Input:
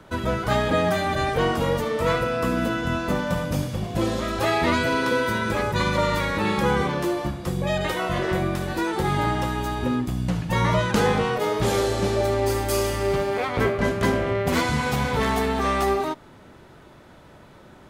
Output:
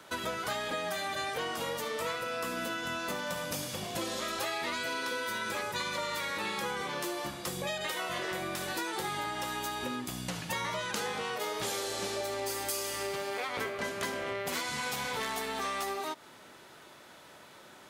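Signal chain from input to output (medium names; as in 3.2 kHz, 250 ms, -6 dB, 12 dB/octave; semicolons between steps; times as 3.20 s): high-pass 520 Hz 6 dB/octave; treble shelf 2.6 kHz +9.5 dB; compression, threshold -29 dBFS, peak gain reduction 11 dB; trim -3 dB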